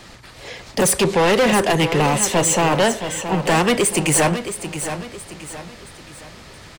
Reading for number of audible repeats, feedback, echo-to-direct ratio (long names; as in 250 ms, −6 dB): 4, 39%, −9.5 dB